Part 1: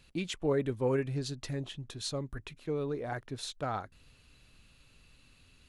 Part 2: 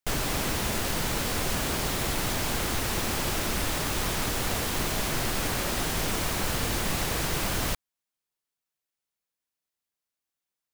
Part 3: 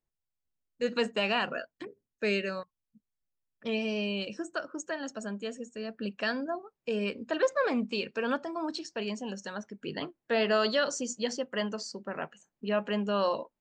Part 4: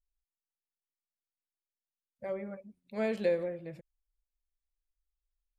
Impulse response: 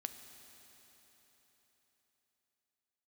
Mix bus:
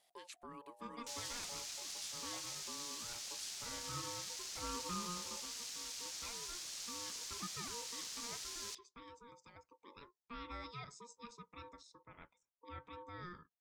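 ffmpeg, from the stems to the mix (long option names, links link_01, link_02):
-filter_complex "[0:a]aemphasis=mode=production:type=75kf,acompressor=threshold=-32dB:ratio=5,volume=-14.5dB[link_01];[1:a]bandpass=frequency=5700:width_type=q:width=2.5:csg=0,adelay=1000,volume=-3.5dB[link_02];[2:a]volume=-18.5dB[link_03];[3:a]alimiter=level_in=2dB:limit=-24dB:level=0:latency=1,volume=-2dB,adelay=1650,volume=-7.5dB[link_04];[link_01][link_02][link_03][link_04]amix=inputs=4:normalize=0,aeval=exprs='val(0)*sin(2*PI*710*n/s)':channel_layout=same"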